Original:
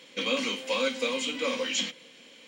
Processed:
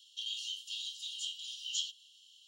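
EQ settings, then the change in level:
Chebyshev high-pass filter 2,800 Hz, order 10
−5.0 dB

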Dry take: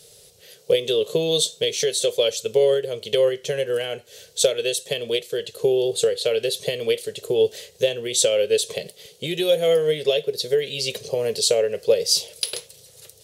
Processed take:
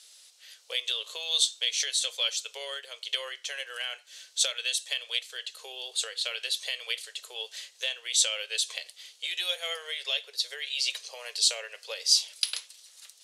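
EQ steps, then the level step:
high-pass filter 1,000 Hz 24 dB per octave
low-pass filter 8,600 Hz 12 dB per octave
−1.5 dB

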